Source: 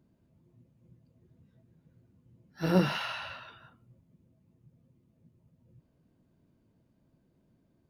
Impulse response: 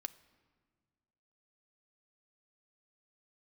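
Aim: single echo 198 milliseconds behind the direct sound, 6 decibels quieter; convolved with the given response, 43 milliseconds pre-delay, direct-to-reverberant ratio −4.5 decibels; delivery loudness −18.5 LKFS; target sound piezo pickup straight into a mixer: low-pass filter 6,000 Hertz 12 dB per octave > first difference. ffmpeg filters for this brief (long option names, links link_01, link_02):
-filter_complex "[0:a]aecho=1:1:198:0.501,asplit=2[link_01][link_02];[1:a]atrim=start_sample=2205,adelay=43[link_03];[link_02][link_03]afir=irnorm=-1:irlink=0,volume=7dB[link_04];[link_01][link_04]amix=inputs=2:normalize=0,lowpass=6000,aderivative,volume=22dB"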